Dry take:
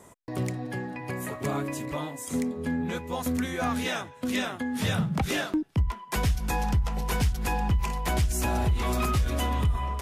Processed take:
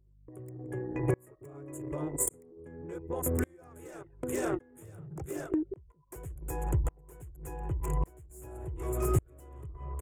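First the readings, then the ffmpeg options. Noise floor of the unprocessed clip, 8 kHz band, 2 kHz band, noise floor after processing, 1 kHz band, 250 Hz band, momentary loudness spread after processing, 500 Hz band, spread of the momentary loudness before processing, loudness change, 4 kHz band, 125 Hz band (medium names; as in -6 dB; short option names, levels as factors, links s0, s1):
-48 dBFS, -2.0 dB, -15.0 dB, -60 dBFS, -12.0 dB, -8.0 dB, 18 LU, -2.5 dB, 6 LU, -6.0 dB, -25.0 dB, -7.5 dB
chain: -filter_complex "[0:a]asuperstop=centerf=5000:order=12:qfactor=1.6,equalizer=f=130:w=0.31:g=11.5,asplit=4[s0][s1][s2][s3];[s1]adelay=174,afreqshift=79,volume=0.112[s4];[s2]adelay=348,afreqshift=158,volume=0.0447[s5];[s3]adelay=522,afreqshift=237,volume=0.018[s6];[s0][s4][s5][s6]amix=inputs=4:normalize=0,acrossover=split=1400[s7][s8];[s8]aeval=exprs='0.119*sin(PI/2*3.55*val(0)/0.119)':c=same[s9];[s7][s9]amix=inputs=2:normalize=0,anlmdn=631,aeval=exprs='val(0)+0.00447*(sin(2*PI*50*n/s)+sin(2*PI*2*50*n/s)/2+sin(2*PI*3*50*n/s)/3+sin(2*PI*4*50*n/s)/4+sin(2*PI*5*50*n/s)/5)':c=same,acompressor=mode=upward:threshold=0.0562:ratio=2.5,firequalizer=gain_entry='entry(150,0);entry(210,-20);entry(340,10);entry(760,-2);entry(1700,-11);entry(3500,-24);entry(5300,-4);entry(7900,-1)':delay=0.05:min_phase=1,acompressor=threshold=0.0398:ratio=5,aeval=exprs='val(0)*pow(10,-33*if(lt(mod(-0.87*n/s,1),2*abs(-0.87)/1000),1-mod(-0.87*n/s,1)/(2*abs(-0.87)/1000),(mod(-0.87*n/s,1)-2*abs(-0.87)/1000)/(1-2*abs(-0.87)/1000))/20)':c=same,volume=1.68"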